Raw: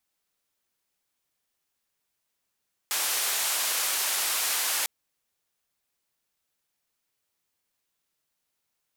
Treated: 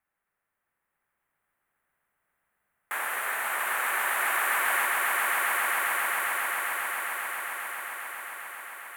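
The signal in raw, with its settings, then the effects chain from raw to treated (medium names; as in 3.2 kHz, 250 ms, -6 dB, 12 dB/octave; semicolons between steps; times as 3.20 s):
noise band 640–14000 Hz, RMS -27.5 dBFS 1.95 s
FFT filter 180 Hz 0 dB, 270 Hz -3 dB, 1.8 kHz +7 dB, 5.2 kHz -29 dB, 9.4 kHz -9 dB; on a send: echo with a slow build-up 134 ms, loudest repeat 8, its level -6 dB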